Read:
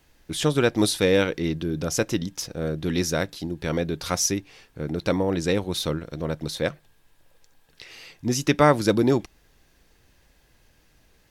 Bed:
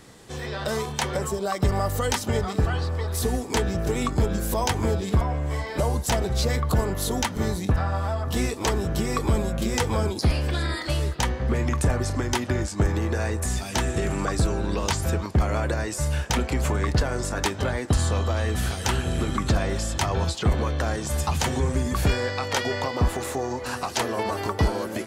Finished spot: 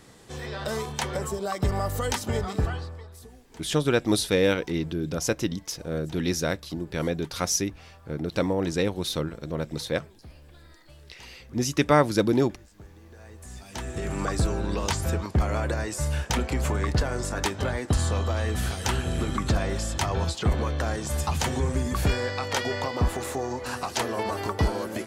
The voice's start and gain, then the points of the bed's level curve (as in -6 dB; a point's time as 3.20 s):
3.30 s, -2.0 dB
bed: 2.65 s -3 dB
3.36 s -26 dB
13.01 s -26 dB
14.22 s -2 dB